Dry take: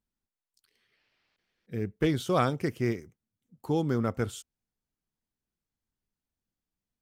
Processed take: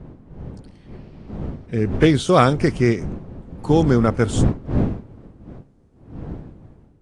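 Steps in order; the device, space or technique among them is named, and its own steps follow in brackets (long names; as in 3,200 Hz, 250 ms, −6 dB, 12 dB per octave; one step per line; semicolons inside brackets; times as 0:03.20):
smartphone video outdoors (wind on the microphone 220 Hz −39 dBFS; automatic gain control gain up to 4 dB; level +7.5 dB; AAC 48 kbit/s 22,050 Hz)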